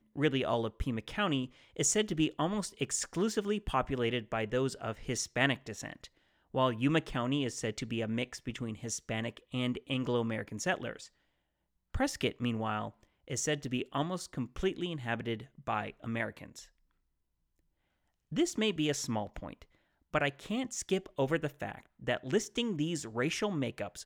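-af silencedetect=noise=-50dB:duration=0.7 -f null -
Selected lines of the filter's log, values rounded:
silence_start: 11.07
silence_end: 11.94 | silence_duration: 0.87
silence_start: 16.66
silence_end: 18.32 | silence_duration: 1.66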